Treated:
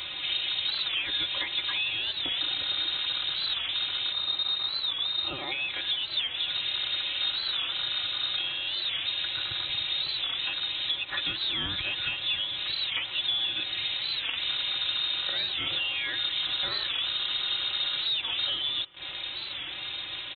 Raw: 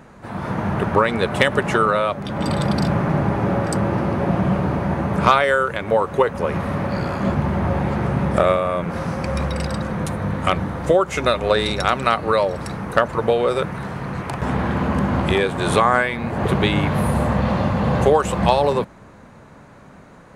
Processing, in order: rattle on loud lows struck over -19 dBFS, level -19 dBFS; in parallel at -2 dB: peak limiter -13 dBFS, peak gain reduction 11 dB; on the sum: time-frequency box 4.12–5.52 s, 300–2500 Hz -17 dB; saturation -7.5 dBFS, distortion -17 dB; compression 16:1, threshold -30 dBFS, peak gain reduction 19 dB; bit crusher 7-bit; high-pass 94 Hz; comb 4.5 ms, depth 99%; thinning echo 170 ms, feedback 72%, high-pass 1.1 kHz, level -19.5 dB; frequency inversion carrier 3.9 kHz; warped record 45 rpm, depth 160 cents

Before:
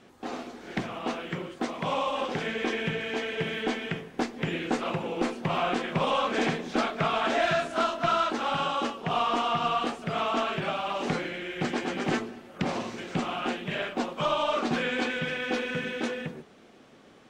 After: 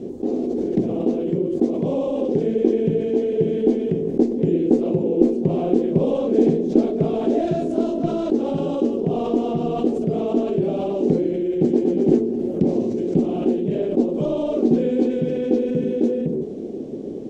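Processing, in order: FFT filter 110 Hz 0 dB, 400 Hz +10 dB, 1.3 kHz -29 dB, 7 kHz -14 dB, 10 kHz -18 dB; in parallel at 0 dB: compressor with a negative ratio -41 dBFS, ratio -1; on the sum: trim +6 dB

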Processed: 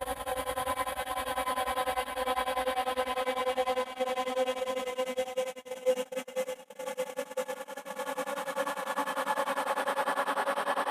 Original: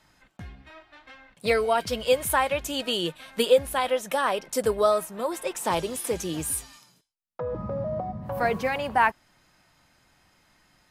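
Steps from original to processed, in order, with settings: Paulstretch 20×, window 0.50 s, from 3.70 s; gate -27 dBFS, range -33 dB; tremolo of two beating tones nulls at 10 Hz; trim -3 dB

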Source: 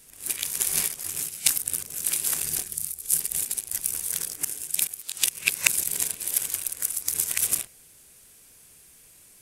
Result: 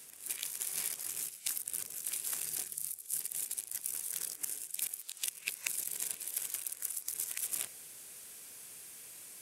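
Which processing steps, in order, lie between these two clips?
high-pass 85 Hz; bass shelf 230 Hz -10 dB; reverse; compression 4:1, threshold -39 dBFS, peak gain reduction 21.5 dB; reverse; trim +3 dB

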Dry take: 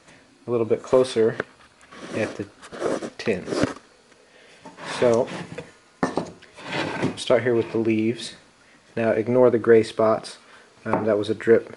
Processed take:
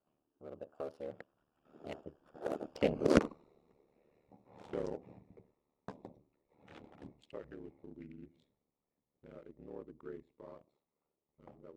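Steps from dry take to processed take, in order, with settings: local Wiener filter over 25 samples; Doppler pass-by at 3.07 s, 48 m/s, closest 10 m; ring modulator 37 Hz

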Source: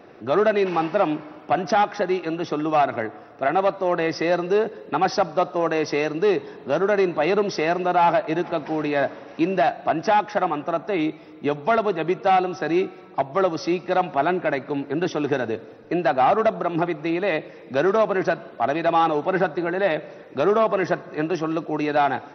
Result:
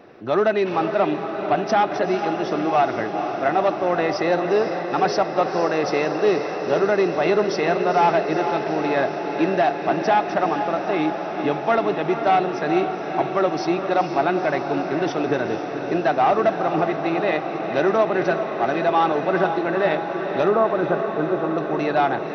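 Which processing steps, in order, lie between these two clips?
20.48–21.58 s: brick-wall FIR low-pass 1.6 kHz; echo that smears into a reverb 472 ms, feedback 77%, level -8 dB

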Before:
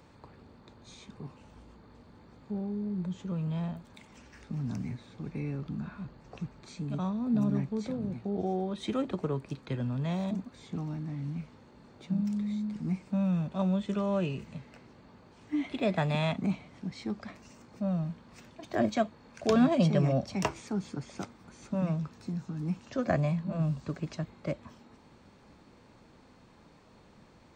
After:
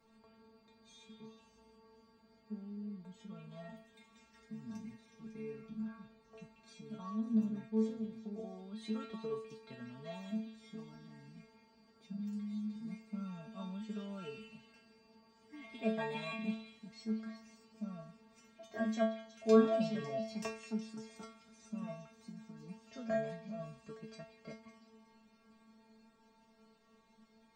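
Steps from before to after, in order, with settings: inharmonic resonator 220 Hz, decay 0.48 s, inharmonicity 0.002; on a send: repeats whose band climbs or falls 184 ms, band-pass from 2.7 kHz, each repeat 0.7 oct, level -6 dB; on the sum: trim +6 dB

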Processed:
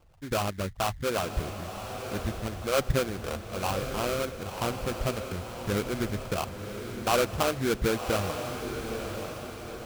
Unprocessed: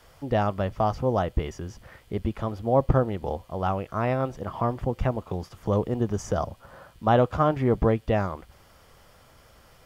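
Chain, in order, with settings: resonances exaggerated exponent 3; sample-rate reducer 1.9 kHz, jitter 20%; echo that smears into a reverb 1043 ms, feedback 50%, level -7 dB; trim -5 dB

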